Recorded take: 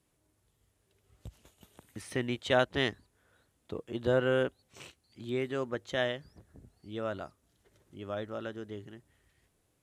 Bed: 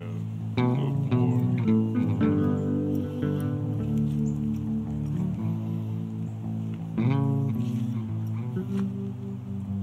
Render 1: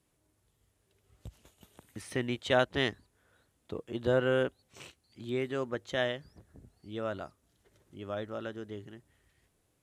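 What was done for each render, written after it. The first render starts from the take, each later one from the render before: nothing audible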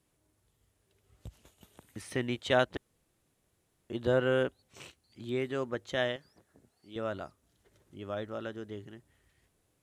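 2.77–3.9 room tone; 6.16–6.96 HPF 460 Hz 6 dB/oct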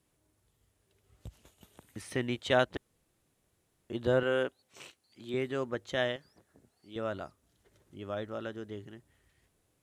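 4.23–5.34 HPF 310 Hz 6 dB/oct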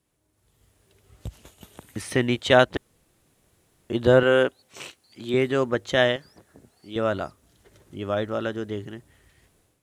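AGC gain up to 11 dB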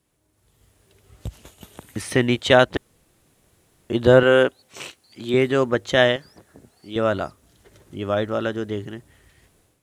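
gain +3.5 dB; limiter -2 dBFS, peak gain reduction 2 dB

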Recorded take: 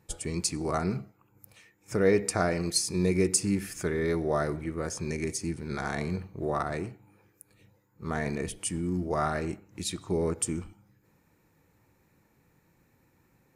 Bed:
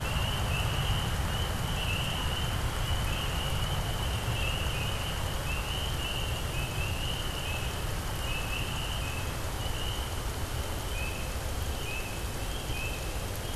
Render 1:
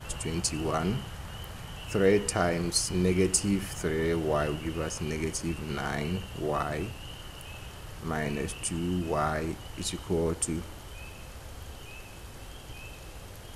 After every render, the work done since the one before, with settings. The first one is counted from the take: add bed -10 dB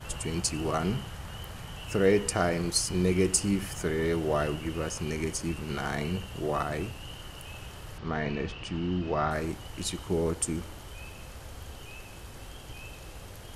7.98–9.31 LPF 4800 Hz 24 dB/oct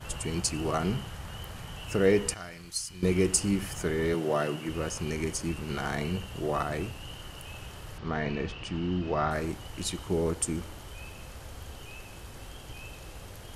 2.34–3.03 passive tone stack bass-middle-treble 5-5-5; 4.14–4.69 HPF 140 Hz 24 dB/oct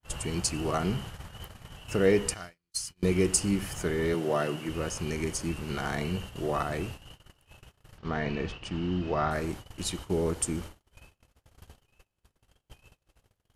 gate -39 dBFS, range -40 dB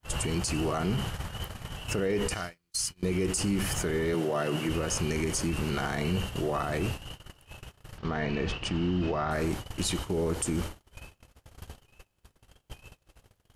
in parallel at -2.5 dB: negative-ratio compressor -35 dBFS; on the sum: limiter -19.5 dBFS, peak gain reduction 9 dB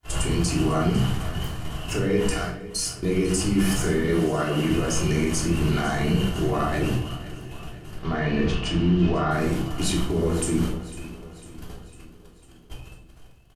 feedback echo 0.501 s, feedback 56%, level -16.5 dB; shoebox room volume 730 m³, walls furnished, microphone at 3.2 m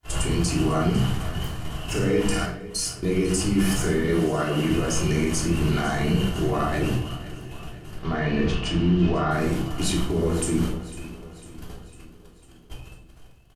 1.83–2.46 flutter echo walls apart 9.4 m, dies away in 0.56 s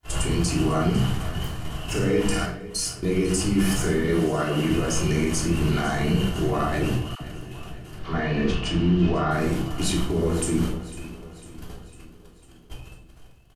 7.15–8.51 dispersion lows, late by 60 ms, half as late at 640 Hz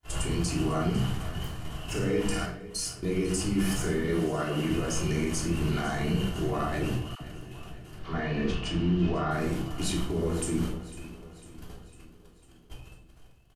gain -5.5 dB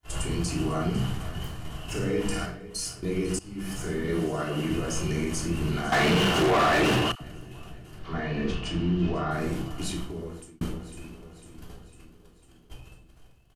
3.39–4.1 fade in, from -20.5 dB; 5.92–7.12 overdrive pedal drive 30 dB, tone 3200 Hz, clips at -14 dBFS; 9.67–10.61 fade out

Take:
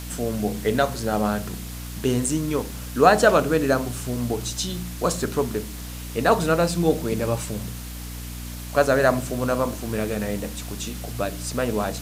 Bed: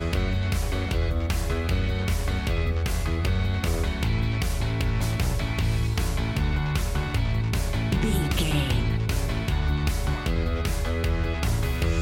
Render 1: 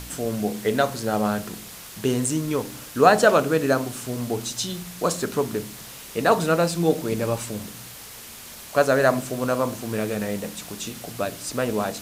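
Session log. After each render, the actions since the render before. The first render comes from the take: de-hum 60 Hz, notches 5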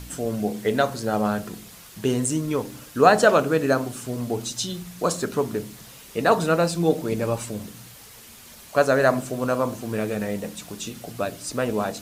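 denoiser 6 dB, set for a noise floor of -41 dBFS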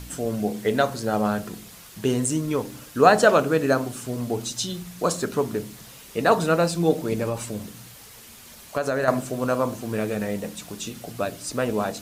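7.22–9.08 compressor, threshold -20 dBFS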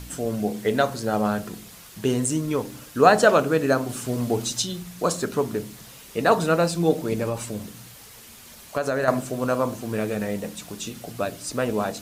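3.89–4.62 gain +3 dB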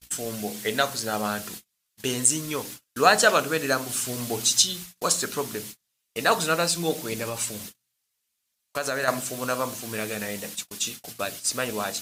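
gate -36 dBFS, range -39 dB; tilt shelf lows -8 dB, about 1300 Hz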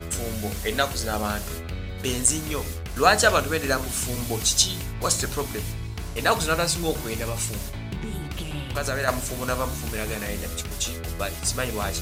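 add bed -8 dB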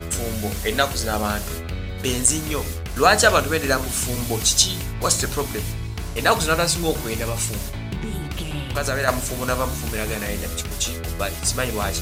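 gain +3.5 dB; limiter -2 dBFS, peak gain reduction 2.5 dB

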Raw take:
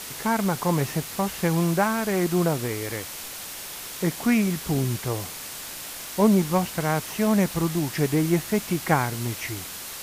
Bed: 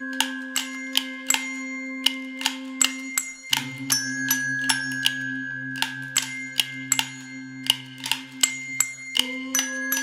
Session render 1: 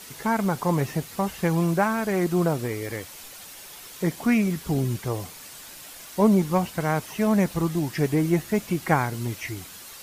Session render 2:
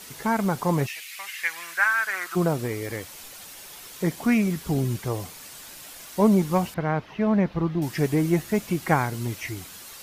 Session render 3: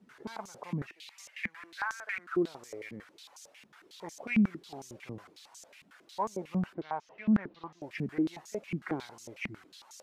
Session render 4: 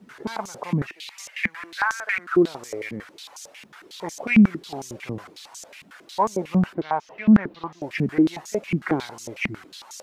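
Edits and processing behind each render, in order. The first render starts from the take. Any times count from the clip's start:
denoiser 8 dB, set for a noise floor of -37 dBFS
0.86–2.35 resonant high-pass 2600 Hz -> 1300 Hz, resonance Q 3.9; 6.74–7.82 air absorption 290 m
soft clip -11 dBFS, distortion -22 dB; stepped band-pass 11 Hz 210–6300 Hz
gain +11.5 dB

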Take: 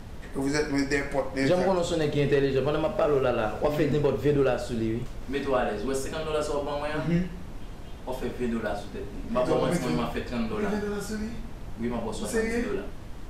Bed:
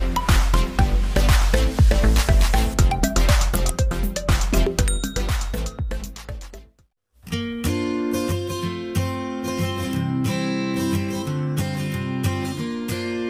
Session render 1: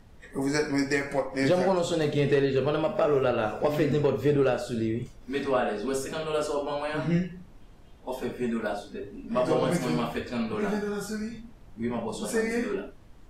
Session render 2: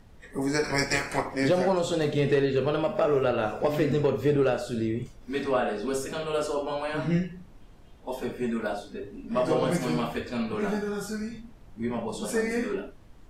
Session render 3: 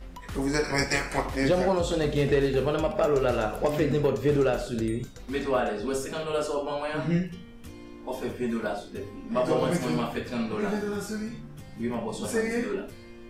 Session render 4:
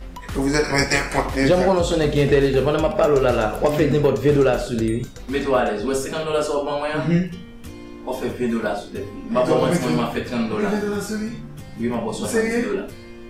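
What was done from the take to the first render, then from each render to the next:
noise print and reduce 12 dB
0.63–1.33 spectral limiter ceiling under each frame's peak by 18 dB
add bed -21.5 dB
gain +7 dB

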